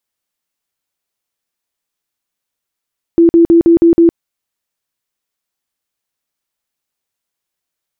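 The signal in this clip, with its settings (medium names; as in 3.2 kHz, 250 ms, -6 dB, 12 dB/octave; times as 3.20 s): tone bursts 336 Hz, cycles 37, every 0.16 s, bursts 6, -3.5 dBFS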